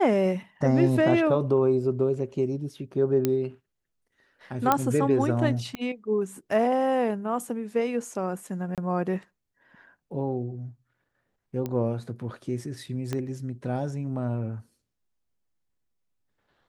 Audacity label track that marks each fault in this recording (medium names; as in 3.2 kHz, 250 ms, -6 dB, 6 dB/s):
3.250000	3.250000	pop -10 dBFS
4.720000	4.720000	pop -7 dBFS
5.750000	5.750000	pop -19 dBFS
8.750000	8.780000	dropout 27 ms
11.660000	11.660000	pop -18 dBFS
13.130000	13.130000	pop -16 dBFS